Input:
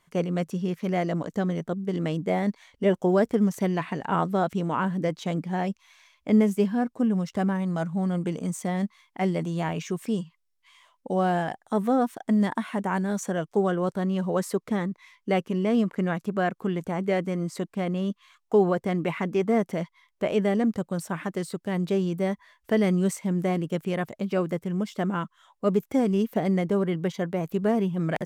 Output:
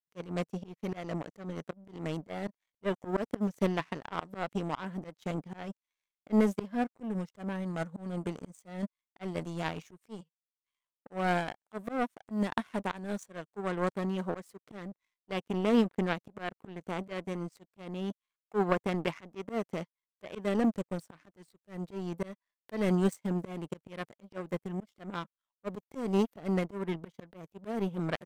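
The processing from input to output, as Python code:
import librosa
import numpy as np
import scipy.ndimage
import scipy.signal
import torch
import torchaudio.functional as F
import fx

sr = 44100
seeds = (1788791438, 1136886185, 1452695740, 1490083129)

y = fx.power_curve(x, sr, exponent=2.0)
y = fx.auto_swell(y, sr, attack_ms=221.0)
y = F.gain(torch.from_numpy(y), 5.5).numpy()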